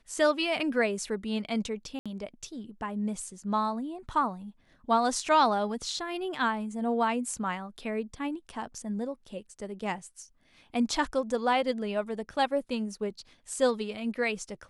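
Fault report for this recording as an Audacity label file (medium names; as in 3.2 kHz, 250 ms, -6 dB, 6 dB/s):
1.990000	2.060000	dropout 66 ms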